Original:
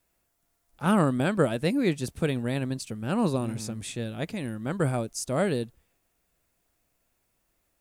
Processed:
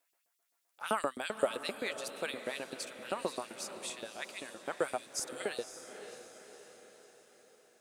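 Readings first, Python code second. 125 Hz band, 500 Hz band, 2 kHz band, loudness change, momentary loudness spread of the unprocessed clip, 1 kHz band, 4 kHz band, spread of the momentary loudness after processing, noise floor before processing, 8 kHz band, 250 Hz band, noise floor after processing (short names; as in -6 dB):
-29.5 dB, -8.0 dB, -4.5 dB, -10.5 dB, 9 LU, -6.0 dB, -2.5 dB, 18 LU, -74 dBFS, -3.0 dB, -19.5 dB, -80 dBFS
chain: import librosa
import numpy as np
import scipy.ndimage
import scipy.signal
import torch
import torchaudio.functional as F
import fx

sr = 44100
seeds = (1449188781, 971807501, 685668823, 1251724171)

y = fx.spec_erase(x, sr, start_s=4.98, length_s=0.43, low_hz=310.0, high_hz=2400.0)
y = fx.filter_lfo_highpass(y, sr, shape='saw_up', hz=7.7, low_hz=380.0, high_hz=5200.0, q=1.4)
y = fx.echo_diffused(y, sr, ms=550, feedback_pct=53, wet_db=-10.5)
y = F.gain(torch.from_numpy(y), -4.5).numpy()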